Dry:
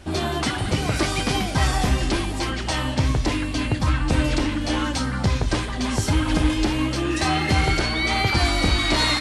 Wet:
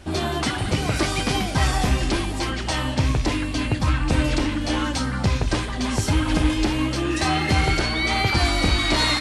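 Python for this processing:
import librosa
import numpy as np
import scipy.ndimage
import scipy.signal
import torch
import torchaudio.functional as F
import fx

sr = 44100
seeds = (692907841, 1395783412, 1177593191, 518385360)

y = fx.rattle_buzz(x, sr, strikes_db=-19.0, level_db=-25.0)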